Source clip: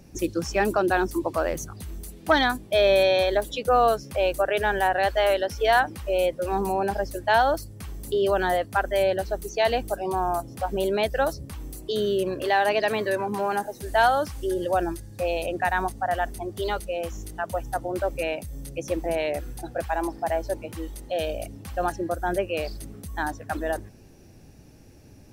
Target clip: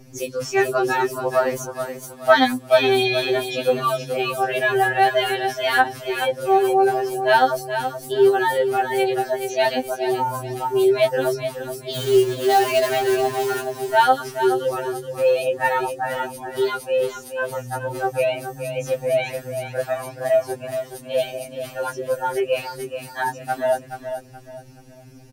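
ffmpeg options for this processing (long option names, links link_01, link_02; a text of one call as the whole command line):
ffmpeg -i in.wav -filter_complex "[0:a]asplit=3[link_01][link_02][link_03];[link_01]afade=type=out:start_time=11.93:duration=0.02[link_04];[link_02]acrusher=bits=3:mode=log:mix=0:aa=0.000001,afade=type=in:start_time=11.93:duration=0.02,afade=type=out:start_time=13.66:duration=0.02[link_05];[link_03]afade=type=in:start_time=13.66:duration=0.02[link_06];[link_04][link_05][link_06]amix=inputs=3:normalize=0,aecho=1:1:425|850|1275|1700:0.355|0.11|0.0341|0.0106,afftfilt=real='re*2.45*eq(mod(b,6),0)':imag='im*2.45*eq(mod(b,6),0)':win_size=2048:overlap=0.75,volume=6dB" out.wav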